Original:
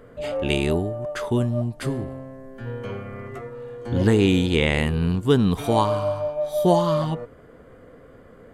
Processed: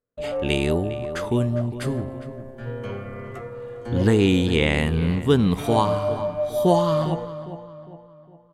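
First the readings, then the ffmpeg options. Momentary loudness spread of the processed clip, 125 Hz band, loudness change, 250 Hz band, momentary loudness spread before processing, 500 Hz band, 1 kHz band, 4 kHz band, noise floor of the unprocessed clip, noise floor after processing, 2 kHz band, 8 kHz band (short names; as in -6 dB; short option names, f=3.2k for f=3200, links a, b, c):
17 LU, 0.0 dB, 0.0 dB, +0.5 dB, 17 LU, +0.5 dB, 0.0 dB, 0.0 dB, -48 dBFS, -49 dBFS, 0.0 dB, 0.0 dB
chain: -filter_complex "[0:a]agate=range=-40dB:threshold=-40dB:ratio=16:detection=peak,asplit=2[a][b];[b]adelay=406,lowpass=f=2.6k:p=1,volume=-13dB,asplit=2[c][d];[d]adelay=406,lowpass=f=2.6k:p=1,volume=0.44,asplit=2[e][f];[f]adelay=406,lowpass=f=2.6k:p=1,volume=0.44,asplit=2[g][h];[h]adelay=406,lowpass=f=2.6k:p=1,volume=0.44[i];[a][c][e][g][i]amix=inputs=5:normalize=0"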